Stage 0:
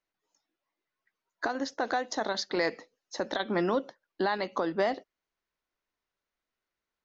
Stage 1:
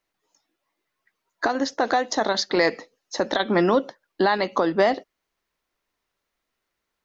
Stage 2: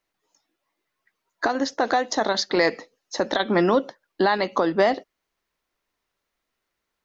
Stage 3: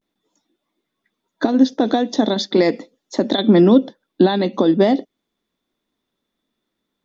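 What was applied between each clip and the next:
band-stop 1.5 kHz, Q 26; trim +8.5 dB
no audible change
vibrato 0.42 Hz 68 cents; small resonant body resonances 230/3500 Hz, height 17 dB, ringing for 20 ms; dynamic bell 1.3 kHz, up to -5 dB, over -34 dBFS, Q 1.5; trim -2.5 dB

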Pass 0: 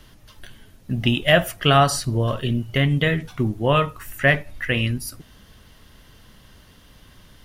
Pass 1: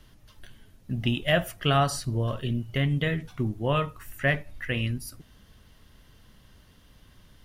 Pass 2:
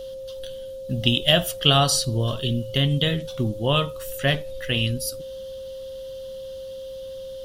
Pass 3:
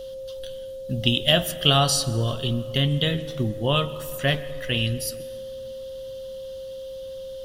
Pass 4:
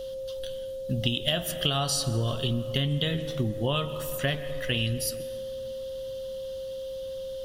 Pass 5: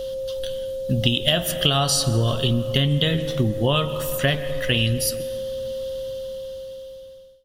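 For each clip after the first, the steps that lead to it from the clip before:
bass shelf 230 Hz +3.5 dB; trim -8 dB
whistle 530 Hz -36 dBFS; resonant high shelf 2.7 kHz +7 dB, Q 3; trim +3.5 dB
reverberation RT60 2.6 s, pre-delay 112 ms, DRR 16 dB; trim -1 dB
compression 6:1, threshold -23 dBFS, peak gain reduction 10.5 dB
fade out at the end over 1.58 s; trim +7 dB

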